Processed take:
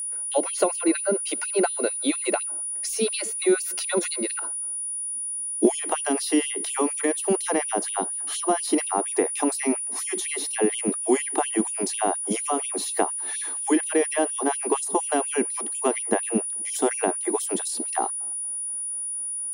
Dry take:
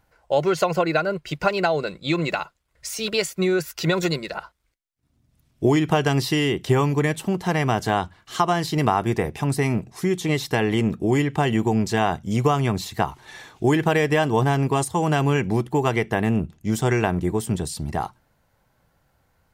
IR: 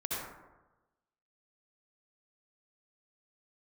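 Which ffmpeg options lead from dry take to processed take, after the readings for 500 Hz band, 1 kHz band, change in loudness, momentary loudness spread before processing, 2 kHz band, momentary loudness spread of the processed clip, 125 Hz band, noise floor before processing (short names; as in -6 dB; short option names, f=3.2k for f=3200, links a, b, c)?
-2.5 dB, -4.5 dB, -2.0 dB, 7 LU, -6.5 dB, 5 LU, -24.0 dB, -67 dBFS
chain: -filter_complex "[0:a]lowshelf=f=480:g=9,acrossover=split=290|870[a][b][c];[a]acompressor=threshold=-19dB:ratio=4[d];[b]acompressor=threshold=-24dB:ratio=4[e];[c]acompressor=threshold=-36dB:ratio=4[f];[d][e][f]amix=inputs=3:normalize=0,aeval=exprs='val(0)+0.0282*sin(2*PI*9700*n/s)':c=same,asplit=2[g][h];[1:a]atrim=start_sample=2205[i];[h][i]afir=irnorm=-1:irlink=0,volume=-26.5dB[j];[g][j]amix=inputs=2:normalize=0,afftfilt=real='re*gte(b*sr/1024,210*pow(2600/210,0.5+0.5*sin(2*PI*4.2*pts/sr)))':imag='im*gte(b*sr/1024,210*pow(2600/210,0.5+0.5*sin(2*PI*4.2*pts/sr)))':win_size=1024:overlap=0.75,volume=3dB"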